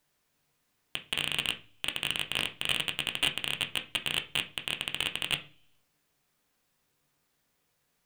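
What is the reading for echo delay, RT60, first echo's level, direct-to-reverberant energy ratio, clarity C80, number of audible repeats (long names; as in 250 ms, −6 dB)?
no echo audible, 0.40 s, no echo audible, 4.5 dB, 20.5 dB, no echo audible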